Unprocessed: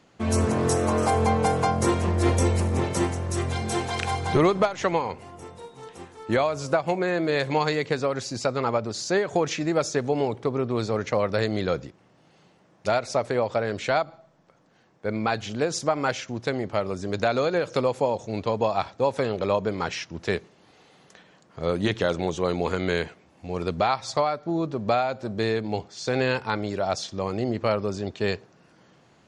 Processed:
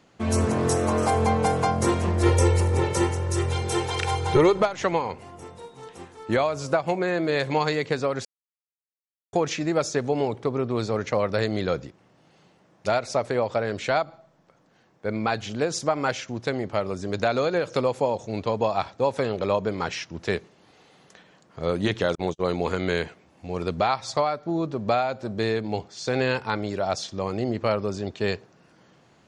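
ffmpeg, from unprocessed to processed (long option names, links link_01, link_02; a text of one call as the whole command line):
ffmpeg -i in.wav -filter_complex "[0:a]asettb=1/sr,asplit=3[link_01][link_02][link_03];[link_01]atrim=end=2.234[link_04];[link_02]atrim=start=2.23:end=4.61,asetpts=PTS-STARTPTS,afade=type=in:duration=0.004:curve=qsin,afade=type=out:start_time=2.376:duration=0.004:curve=qsin,aecho=1:1:2.2:0.68,atrim=end_sample=104958[link_05];[link_03]atrim=start=4.606[link_06];[link_04][link_05]acrossfade=duration=0.004:curve1=hsin:curve2=qsin[link_07];[link_07][link_06]acrossfade=duration=0.004:curve1=qsin:curve2=hsin,asettb=1/sr,asplit=3[link_08][link_09][link_10];[link_08]atrim=end=22.154[link_11];[link_09]atrim=start=22.15:end=22.6,asetpts=PTS-STARTPTS,afade=type=in:duration=0.004:curve=qsin,afade=type=out:start_time=0.446:duration=0.004:curve=qsin,agate=range=-45dB:threshold=-30dB:ratio=16:release=100:detection=peak[link_12];[link_10]atrim=start=22.596[link_13];[link_11][link_12]acrossfade=duration=0.004:curve1=hsin:curve2=qsin[link_14];[link_14][link_13]acrossfade=duration=0.004:curve1=qsin:curve2=hsin,asplit=3[link_15][link_16][link_17];[link_15]atrim=end=8.25,asetpts=PTS-STARTPTS,afade=type=out:start_time=8.246:duration=0.004:curve=hsin[link_18];[link_16]atrim=start=8.25:end=9.33,asetpts=PTS-STARTPTS,volume=0[link_19];[link_17]atrim=start=9.33,asetpts=PTS-STARTPTS,afade=type=in:duration=0.004:curve=hsin[link_20];[link_18][link_19][link_20]concat=n=3:v=0:a=1" out.wav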